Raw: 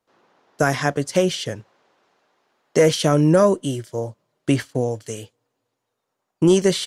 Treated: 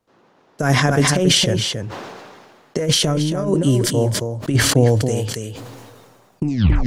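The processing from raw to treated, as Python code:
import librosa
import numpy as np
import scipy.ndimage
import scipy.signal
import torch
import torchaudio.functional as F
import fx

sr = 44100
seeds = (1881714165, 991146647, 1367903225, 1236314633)

p1 = fx.tape_stop_end(x, sr, length_s=0.45)
p2 = fx.over_compress(p1, sr, threshold_db=-19.0, ratio=-0.5)
p3 = fx.low_shelf(p2, sr, hz=310.0, db=9.0)
p4 = p3 + fx.echo_single(p3, sr, ms=276, db=-8.0, dry=0)
p5 = fx.sustainer(p4, sr, db_per_s=31.0)
y = F.gain(torch.from_numpy(p5), -1.5).numpy()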